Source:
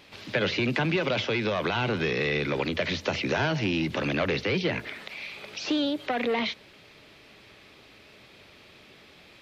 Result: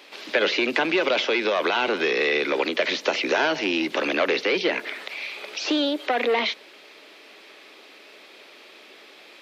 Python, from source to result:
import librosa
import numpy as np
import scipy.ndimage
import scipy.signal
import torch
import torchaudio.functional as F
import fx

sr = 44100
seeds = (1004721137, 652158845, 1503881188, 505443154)

y = scipy.signal.sosfilt(scipy.signal.butter(4, 300.0, 'highpass', fs=sr, output='sos'), x)
y = F.gain(torch.from_numpy(y), 5.5).numpy()